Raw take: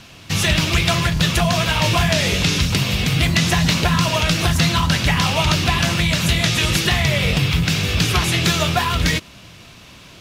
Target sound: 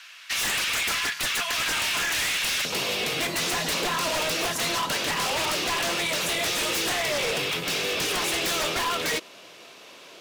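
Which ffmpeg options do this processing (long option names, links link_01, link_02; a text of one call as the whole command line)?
ffmpeg -i in.wav -af "asetnsamples=nb_out_samples=441:pad=0,asendcmd='2.65 highpass f 440',highpass=frequency=1600:width_type=q:width=1.9,aeval=exprs='0.133*(abs(mod(val(0)/0.133+3,4)-2)-1)':channel_layout=same,volume=-3.5dB" out.wav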